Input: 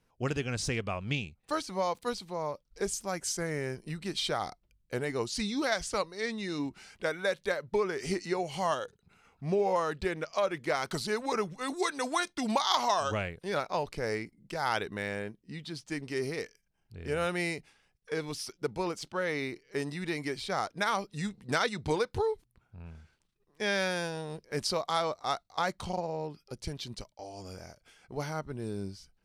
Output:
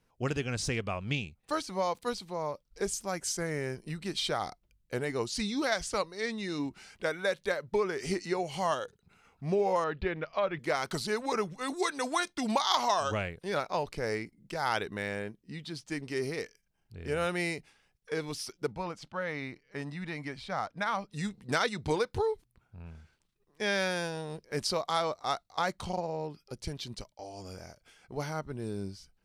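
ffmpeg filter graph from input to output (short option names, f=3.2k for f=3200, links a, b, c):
-filter_complex "[0:a]asettb=1/sr,asplit=3[a][b][c];[a]atrim=end=9.844[d];[b]atrim=start=9.84:end=10.59,asetpts=PTS-STARTPTS,afade=t=in:d=0.004:c=qsin,afade=t=out:st=0.746:d=0.004:c=qsin,lowpass=f=3.6k:w=0.5412,lowpass=f=3.6k:w=1.3066,asubboost=boost=8.5:cutoff=170[e];[c]atrim=start=10.586[f];[d][e]acrossfade=d=0.004:c1=hsin:c2=qsin[g];[g][f]acrossfade=d=0.004:c1=qsin:c2=hsin,asettb=1/sr,asplit=3[h][i][j];[h]atrim=end=18.724[k];[i]atrim=start=18.72:end=21.11,asetpts=PTS-STARTPTS,afade=t=in:d=0.004:c=qsin,afade=t=out:st=2.386:d=0.004:c=qsin,lowpass=f=2.1k:p=1,equalizer=f=380:t=o:w=0.57:g=-11[l];[j]atrim=start=21.106[m];[k][l]acrossfade=d=0.004:c1=hsin:c2=qsin[n];[n][m]acrossfade=d=0.004:c1=qsin:c2=hsin"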